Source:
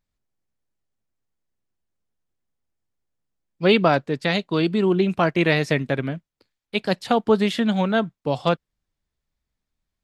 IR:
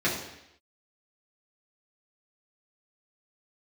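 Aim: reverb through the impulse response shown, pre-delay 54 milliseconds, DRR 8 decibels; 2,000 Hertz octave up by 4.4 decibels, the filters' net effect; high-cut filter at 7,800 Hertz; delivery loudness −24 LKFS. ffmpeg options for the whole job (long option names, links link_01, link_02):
-filter_complex "[0:a]lowpass=7800,equalizer=frequency=2000:width_type=o:gain=5.5,asplit=2[link_01][link_02];[1:a]atrim=start_sample=2205,adelay=54[link_03];[link_02][link_03]afir=irnorm=-1:irlink=0,volume=-20.5dB[link_04];[link_01][link_04]amix=inputs=2:normalize=0,volume=-4.5dB"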